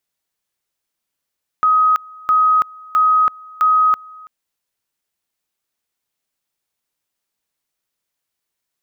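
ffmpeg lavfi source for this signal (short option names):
-f lavfi -i "aevalsrc='pow(10,(-10-25*gte(mod(t,0.66),0.33))/20)*sin(2*PI*1260*t)':d=2.64:s=44100"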